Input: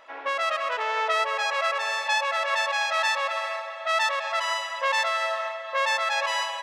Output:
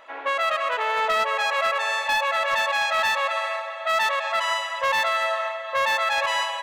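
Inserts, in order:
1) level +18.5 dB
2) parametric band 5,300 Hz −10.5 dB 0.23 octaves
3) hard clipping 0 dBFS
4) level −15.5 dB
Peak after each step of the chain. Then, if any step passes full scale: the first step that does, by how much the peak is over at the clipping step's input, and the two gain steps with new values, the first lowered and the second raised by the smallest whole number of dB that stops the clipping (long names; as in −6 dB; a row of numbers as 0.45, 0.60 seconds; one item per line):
+6.5, +6.0, 0.0, −15.5 dBFS
step 1, 6.0 dB
step 1 +12.5 dB, step 4 −9.5 dB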